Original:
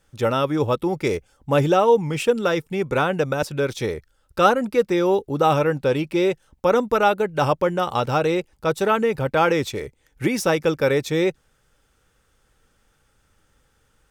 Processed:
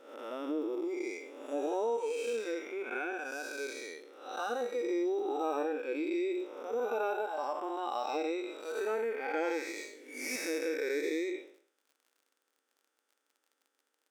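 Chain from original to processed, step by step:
spectrum smeared in time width 346 ms
noise reduction from a noise print of the clip's start 14 dB
downward compressor 2.5 to 1, threshold −32 dBFS, peak gain reduction 8 dB
surface crackle 43 per second −54 dBFS
linear-phase brick-wall high-pass 240 Hz
0:09.74–0:10.36: flutter between parallel walls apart 3.4 metres, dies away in 0.38 s

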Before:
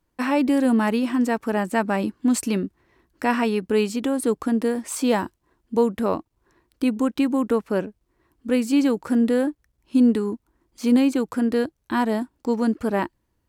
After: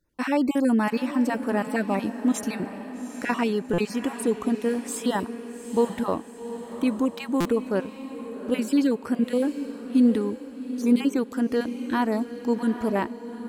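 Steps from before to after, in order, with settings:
time-frequency cells dropped at random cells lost 25%
feedback delay with all-pass diffusion 802 ms, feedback 46%, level −11 dB
buffer that repeats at 0:03.73/0:07.40, samples 256, times 8
level −2 dB

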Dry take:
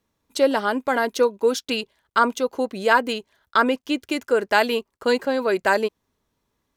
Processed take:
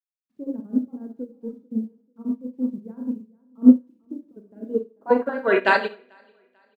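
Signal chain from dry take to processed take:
time-frequency cells dropped at random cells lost 37%
0:01.12–0:03.04: low-pass that shuts in the quiet parts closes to 370 Hz, open at −14.5 dBFS
high-pass filter 120 Hz 12 dB per octave
in parallel at −2 dB: brickwall limiter −12 dBFS, peak gain reduction 7.5 dB
on the sum: low-pass filter sweep 220 Hz → 3,400 Hz, 0:04.56–0:05.68
bit-depth reduction 10 bits, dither none
on a send: repeating echo 442 ms, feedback 39%, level −15.5 dB
on the sum: four-comb reverb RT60 0.53 s, combs from 28 ms, DRR 2 dB
expander for the loud parts 2.5 to 1, over −25 dBFS
level +2.5 dB

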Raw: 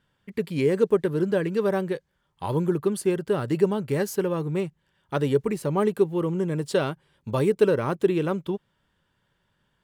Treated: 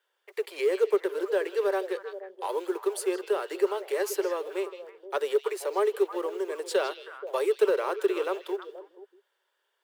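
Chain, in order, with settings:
mu-law and A-law mismatch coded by mu
noise gate −55 dBFS, range −11 dB
Butterworth high-pass 370 Hz 72 dB per octave
in parallel at −4 dB: soft clipping −16.5 dBFS, distortion −14 dB
on the sum: echo through a band-pass that steps 159 ms, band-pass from 3,700 Hz, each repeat −1.4 octaves, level −6 dB
level −6 dB

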